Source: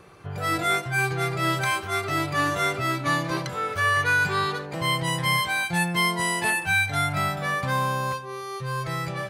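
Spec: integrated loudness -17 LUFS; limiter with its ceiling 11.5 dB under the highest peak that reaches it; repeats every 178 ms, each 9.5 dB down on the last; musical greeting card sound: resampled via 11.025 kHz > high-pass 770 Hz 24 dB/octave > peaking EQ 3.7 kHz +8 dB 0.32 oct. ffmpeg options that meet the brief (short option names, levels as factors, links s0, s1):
-af "alimiter=limit=0.075:level=0:latency=1,aecho=1:1:178|356|534|712:0.335|0.111|0.0365|0.012,aresample=11025,aresample=44100,highpass=f=770:w=0.5412,highpass=f=770:w=1.3066,equalizer=f=3700:t=o:w=0.32:g=8,volume=5.01"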